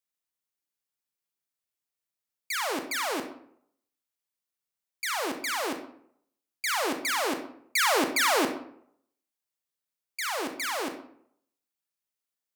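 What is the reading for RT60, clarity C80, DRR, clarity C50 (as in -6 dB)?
0.65 s, 11.5 dB, 6.0 dB, 8.0 dB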